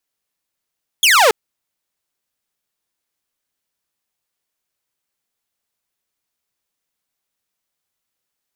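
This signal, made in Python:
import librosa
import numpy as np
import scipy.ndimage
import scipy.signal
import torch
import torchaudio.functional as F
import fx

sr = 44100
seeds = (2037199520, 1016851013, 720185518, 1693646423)

y = fx.laser_zap(sr, level_db=-6.0, start_hz=3500.0, end_hz=400.0, length_s=0.28, wave='saw')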